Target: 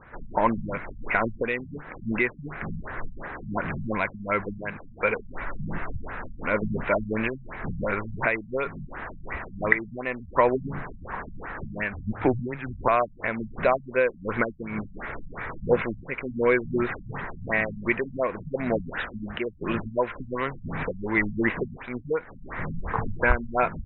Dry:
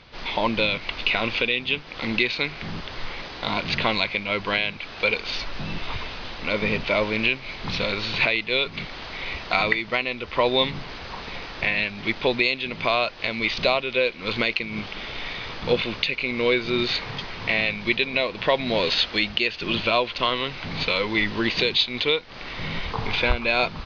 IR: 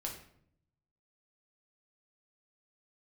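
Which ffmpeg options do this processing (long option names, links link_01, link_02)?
-filter_complex "[0:a]highshelf=frequency=2400:width_type=q:width=3:gain=-12.5,asettb=1/sr,asplit=3[link_01][link_02][link_03];[link_01]atrim=end=11.934[link_04];[link_02]atrim=start=11.93:end=12.88,asetpts=PTS-STARTPTS,afade=type=in:duration=0.004:curve=qsin,afade=type=out:start_time=0.946:duration=0.004:curve=qsin,afreqshift=-120[link_05];[link_03]atrim=start=12.876[link_06];[link_04][link_05]acrossfade=duration=0.004:curve1=hsin:curve2=qsin[link_07];[link_07][link_06]acrossfade=duration=0.004:curve1=qsin:curve2=hsin,afftfilt=real='re*lt(b*sr/1024,210*pow(4100/210,0.5+0.5*sin(2*PI*2.8*pts/sr)))':imag='im*lt(b*sr/1024,210*pow(4100/210,0.5+0.5*sin(2*PI*2.8*pts/sr)))':win_size=1024:overlap=0.75"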